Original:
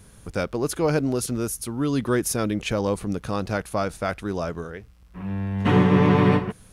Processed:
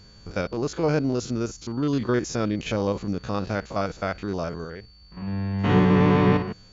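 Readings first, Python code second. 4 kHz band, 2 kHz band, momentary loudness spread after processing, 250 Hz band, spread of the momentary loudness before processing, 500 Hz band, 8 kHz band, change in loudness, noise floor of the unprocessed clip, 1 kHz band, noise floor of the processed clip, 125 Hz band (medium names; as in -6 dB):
-1.5 dB, -1.5 dB, 14 LU, -0.5 dB, 13 LU, -1.0 dB, -8.0 dB, -1.0 dB, -50 dBFS, -1.0 dB, -51 dBFS, -1.0 dB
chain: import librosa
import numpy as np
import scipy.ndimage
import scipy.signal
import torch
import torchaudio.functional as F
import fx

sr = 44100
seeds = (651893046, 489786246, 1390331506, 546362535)

y = fx.spec_steps(x, sr, hold_ms=50)
y = y + 10.0 ** (-53.0 / 20.0) * np.sin(2.0 * np.pi * 4500.0 * np.arange(len(y)) / sr)
y = fx.brickwall_lowpass(y, sr, high_hz=7400.0)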